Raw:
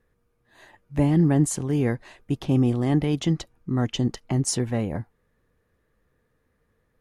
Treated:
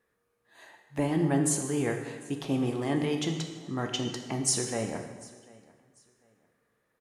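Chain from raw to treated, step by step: HPF 470 Hz 6 dB/oct; bell 8800 Hz +2.5 dB 0.43 oct; feedback echo 0.745 s, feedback 26%, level -23.5 dB; plate-style reverb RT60 1.3 s, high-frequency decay 0.9×, DRR 3.5 dB; gain -1.5 dB

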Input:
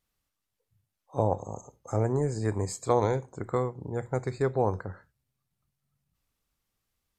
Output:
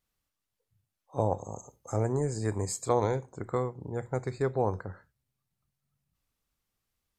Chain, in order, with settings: 1.19–2.89 high shelf 6400 Hz +8.5 dB; gain -2 dB

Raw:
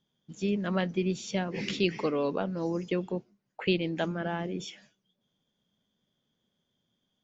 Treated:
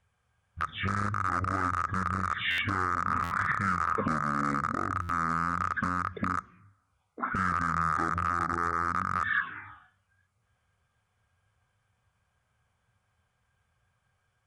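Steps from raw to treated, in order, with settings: rattling part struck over -43 dBFS, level -22 dBFS; low shelf 150 Hz -4.5 dB; in parallel at -6.5 dB: bit-crush 4-bit; on the sum: speed mistake 15 ips tape played at 7.5 ips; compressor, threshold -29 dBFS, peak gain reduction 12 dB; band shelf 1600 Hz +13.5 dB 1.2 oct; envelope phaser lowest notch 290 Hz, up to 2800 Hz, full sweep at -25 dBFS; limiter -26.5 dBFS, peak gain reduction 15 dB; on a send at -19 dB: reverb RT60 1.0 s, pre-delay 3 ms; on the sum: stuck buffer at 2.5/3.23/5.01, samples 512, times 6; core saturation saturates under 240 Hz; gain +9 dB

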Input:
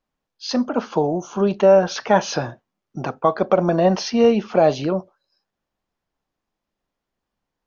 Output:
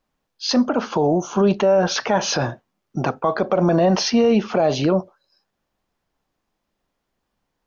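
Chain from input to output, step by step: limiter -14.5 dBFS, peak gain reduction 10 dB; gain +5.5 dB

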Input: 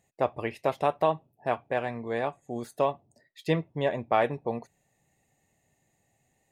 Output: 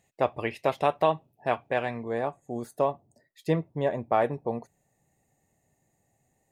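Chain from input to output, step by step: bell 3000 Hz +3 dB 1.6 oct, from 2.03 s -8 dB; gain +1 dB

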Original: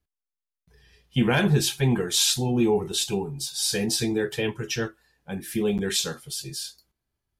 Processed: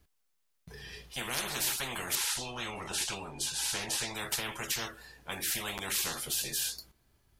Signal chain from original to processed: 2.15–4.15 air absorption 74 m; spectral compressor 10:1; gain -5 dB

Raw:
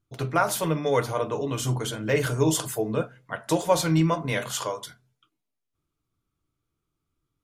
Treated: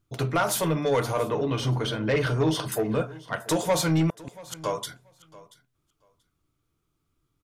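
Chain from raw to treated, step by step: in parallel at -3 dB: compressor, threshold -29 dBFS, peak gain reduction 13.5 dB; 1.2–2.72 on the sum: polynomial smoothing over 15 samples; 4.08–4.64 flipped gate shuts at -17 dBFS, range -39 dB; soft clip -16.5 dBFS, distortion -13 dB; feedback echo 0.683 s, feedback 15%, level -20.5 dB

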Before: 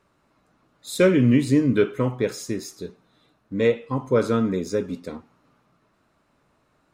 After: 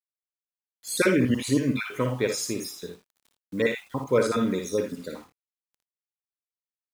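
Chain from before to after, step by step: random spectral dropouts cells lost 38%; tilt +2 dB/oct; bit-crush 9-bit; early reflections 57 ms -6.5 dB, 80 ms -11.5 dB

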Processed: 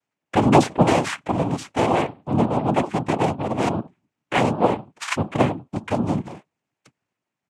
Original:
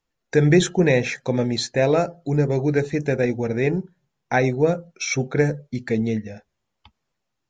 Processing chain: downsampling 8000 Hz; noise vocoder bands 4

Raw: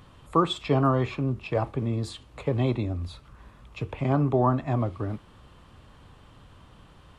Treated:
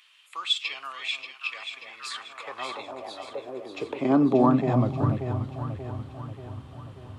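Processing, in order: dynamic EQ 5300 Hz, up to +5 dB, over -52 dBFS, Q 1; echo with dull and thin repeats by turns 0.292 s, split 850 Hz, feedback 73%, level -6 dB; high-pass sweep 2500 Hz -> 86 Hz, 1.67–5.49

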